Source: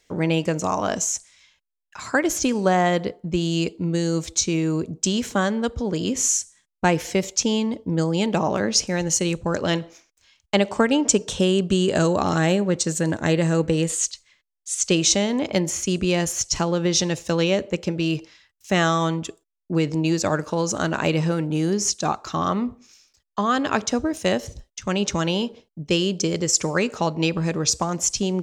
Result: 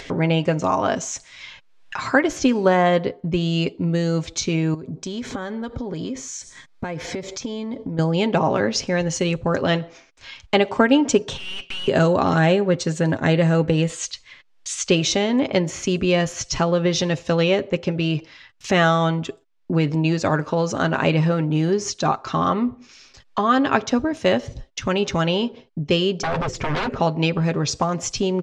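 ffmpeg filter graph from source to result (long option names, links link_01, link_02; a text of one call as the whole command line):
ffmpeg -i in.wav -filter_complex "[0:a]asettb=1/sr,asplit=3[link_01][link_02][link_03];[link_01]atrim=end=4.744[link_04];[link_02]atrim=start=4.74:end=7.99,asetpts=PTS-STARTPTS,afade=type=in:duration=0.004:curve=qsin,afade=type=out:start_time=3.246:duration=0.004:curve=qsin,bandreject=frequency=2800:width=6.6,acompressor=threshold=-34dB:ratio=6:attack=3.2:release=140:knee=1:detection=peak[link_05];[link_03]atrim=start=7.986[link_06];[link_04][link_05]acrossfade=duration=0.004:curve1=hsin:curve2=qsin[link_07];[link_07][link_06]acrossfade=duration=0.004:curve1=qsin:curve2=hsin,asettb=1/sr,asplit=3[link_08][link_09][link_10];[link_08]atrim=end=11.374[link_11];[link_09]atrim=start=11.37:end=11.88,asetpts=PTS-STARTPTS,afade=type=in:duration=0.004:curve=qsin,afade=type=out:start_time=0.506:duration=0.004:curve=qsin,highpass=frequency=2500:width_type=q:width=4,aeval=exprs='(tanh(79.4*val(0)+0.8)-tanh(0.8))/79.4':channel_layout=same[link_12];[link_10]atrim=start=11.876[link_13];[link_11][link_12]acrossfade=duration=0.004:curve1=hsin:curve2=qsin[link_14];[link_14][link_13]acrossfade=duration=0.004:curve1=qsin:curve2=hsin,asettb=1/sr,asplit=3[link_15][link_16][link_17];[link_15]atrim=end=26.234[link_18];[link_16]atrim=start=26.23:end=27,asetpts=PTS-STARTPTS,afade=type=in:duration=0.004:curve=qsin,afade=type=out:start_time=0.766:duration=0.004:curve=qsin,aemphasis=mode=reproduction:type=riaa,aeval=exprs='0.0794*(abs(mod(val(0)/0.0794+3,4)-2)-1)':channel_layout=same[link_19];[link_17]atrim=start=26.996[link_20];[link_18][link_19]acrossfade=duration=0.004:curve1=hsin:curve2=qsin[link_21];[link_21][link_20]acrossfade=duration=0.004:curve1=qsin:curve2=hsin,lowpass=3700,aecho=1:1:7.5:0.43,acompressor=mode=upward:threshold=-23dB:ratio=2.5,volume=2.5dB" out.wav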